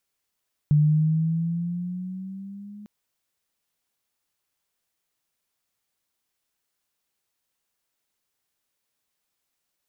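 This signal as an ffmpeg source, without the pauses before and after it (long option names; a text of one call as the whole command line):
ffmpeg -f lavfi -i "aevalsrc='pow(10,(-14-25*t/2.15)/20)*sin(2*PI*148*2.15/(6*log(2)/12)*(exp(6*log(2)/12*t/2.15)-1))':duration=2.15:sample_rate=44100" out.wav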